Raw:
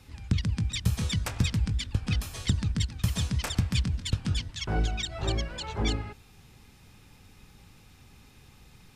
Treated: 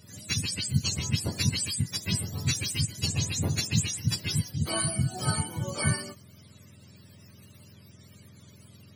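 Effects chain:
frequency axis turned over on the octave scale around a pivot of 700 Hz
0:00.99–0:02.06: multiband upward and downward expander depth 40%
level +2.5 dB

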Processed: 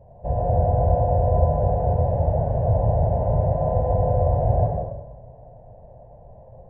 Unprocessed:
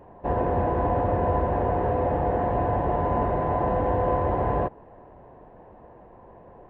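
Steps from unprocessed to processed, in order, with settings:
drawn EQ curve 140 Hz 0 dB, 330 Hz −24 dB, 610 Hz −2 dB, 1,200 Hz −28 dB, 3,700 Hz −21 dB
dense smooth reverb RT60 1 s, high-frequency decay 0.5×, pre-delay 80 ms, DRR −1 dB
level +6 dB

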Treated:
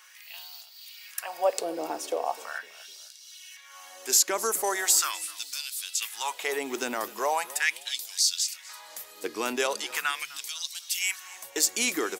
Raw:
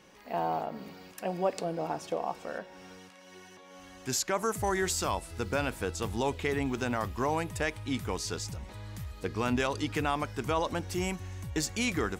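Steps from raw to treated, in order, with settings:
auto-filter high-pass sine 0.4 Hz 300–4,400 Hz
RIAA equalisation recording
echo with shifted repeats 253 ms, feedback 33%, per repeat −34 Hz, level −20 dB

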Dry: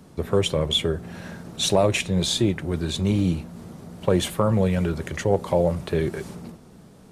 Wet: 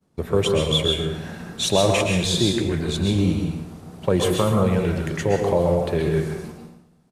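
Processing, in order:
downward expander −37 dBFS
repeating echo 114 ms, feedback 35%, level −12 dB
dense smooth reverb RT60 0.53 s, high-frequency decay 0.8×, pre-delay 120 ms, DRR 1.5 dB

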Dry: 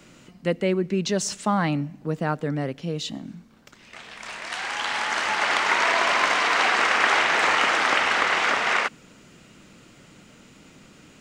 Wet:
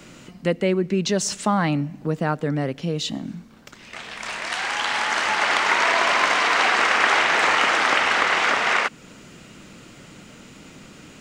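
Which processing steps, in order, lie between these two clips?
in parallel at 0 dB: downward compressor, threshold −31 dBFS, peak gain reduction 14.5 dB

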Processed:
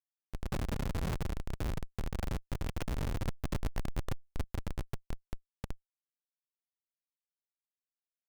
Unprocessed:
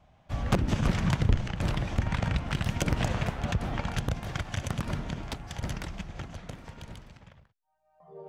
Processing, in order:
comparator with hysteresis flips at −23.5 dBFS
0:03.27–0:04.44: power curve on the samples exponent 0.5
level −2 dB

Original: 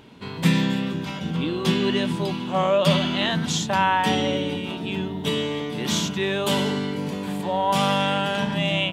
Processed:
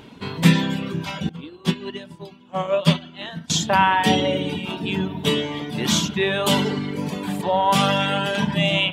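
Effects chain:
reverb reduction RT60 0.97 s
spring reverb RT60 1.2 s, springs 37/48 ms, chirp 25 ms, DRR 14 dB
0:01.29–0:03.50: expander for the loud parts 2.5 to 1, over −30 dBFS
level +5 dB

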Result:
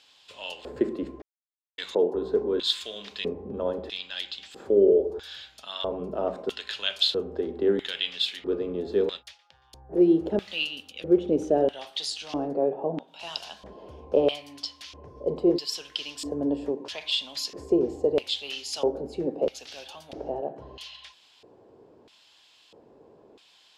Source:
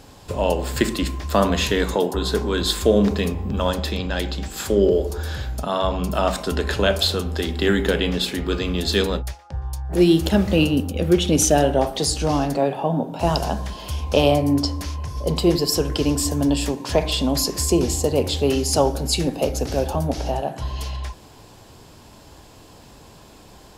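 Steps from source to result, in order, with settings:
0:12.53–0:13.08: high-shelf EQ 4,000 Hz −8.5 dB
auto-filter band-pass square 0.77 Hz 430–3,300 Hz
0:01.22–0:01.78: silence

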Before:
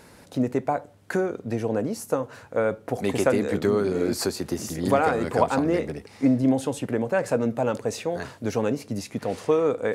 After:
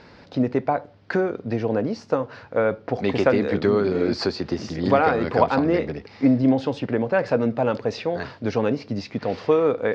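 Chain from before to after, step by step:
Chebyshev low-pass filter 5,000 Hz, order 4
level +3.5 dB

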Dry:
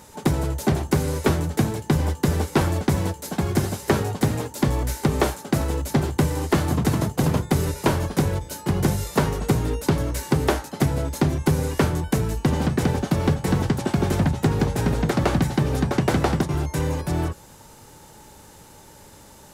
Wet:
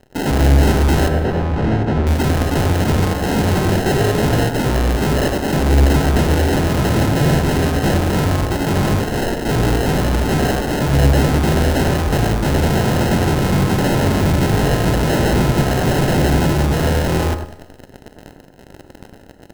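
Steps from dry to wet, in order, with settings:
spectrum averaged block by block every 50 ms
0:09.00–0:09.48: Bessel high-pass filter 1,000 Hz, order 4
fuzz pedal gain 42 dB, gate −44 dBFS
decimation without filtering 38×
0:01.08–0:02.07: head-to-tape spacing loss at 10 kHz 26 dB
bucket-brigade delay 101 ms, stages 1,024, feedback 35%, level −5.5 dB
four-comb reverb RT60 1.2 s, combs from 29 ms, DRR 10.5 dB
expander for the loud parts 1.5 to 1, over −26 dBFS

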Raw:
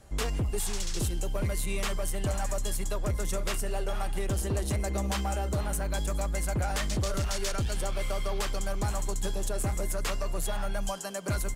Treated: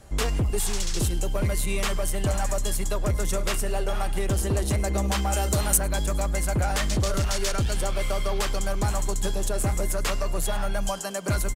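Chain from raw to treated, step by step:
0:05.33–0:05.78: high-shelf EQ 3,000 Hz +11.5 dB
on a send: single-tap delay 104 ms −23.5 dB
on the sum: level +5 dB

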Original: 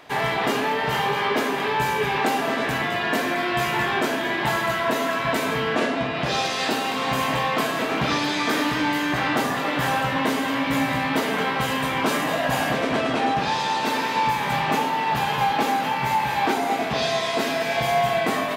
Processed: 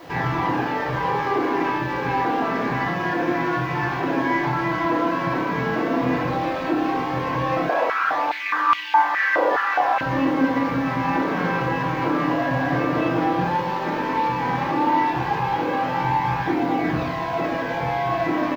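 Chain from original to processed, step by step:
running median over 15 samples
parametric band 14,000 Hz +14 dB 2 octaves
brickwall limiter −22.5 dBFS, peak gain reduction 13 dB
flanger 0.12 Hz, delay 0.2 ms, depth 7.2 ms, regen +48%
background noise violet −39 dBFS
high-frequency loss of the air 260 metres
double-tracking delay 23 ms −12 dB
convolution reverb RT60 0.55 s, pre-delay 3 ms, DRR −5 dB
0:07.69–0:10.01: high-pass on a step sequencer 4.8 Hz 570–2,800 Hz
level +6.5 dB

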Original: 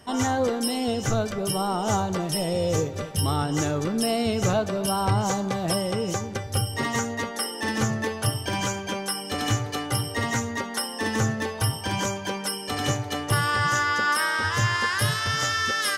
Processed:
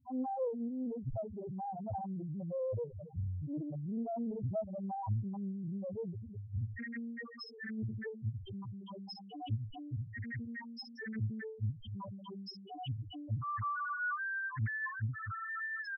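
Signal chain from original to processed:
echo with shifted repeats 183 ms, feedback 35%, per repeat −100 Hz, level −16.5 dB
spectral peaks only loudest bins 1
highs frequency-modulated by the lows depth 0.64 ms
level −5 dB

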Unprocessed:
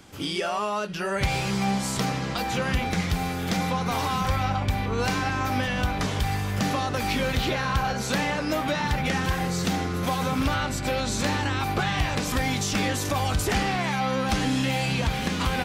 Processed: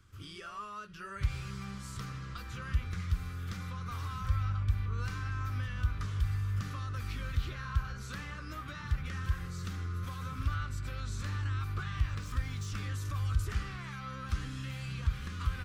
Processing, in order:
0:11.95–0:12.67: running median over 3 samples
drawn EQ curve 100 Hz 0 dB, 170 Hz −14 dB, 260 Hz −19 dB, 380 Hz −17 dB, 800 Hz −29 dB, 1,200 Hz −6 dB, 2,100 Hz −15 dB
level −3 dB

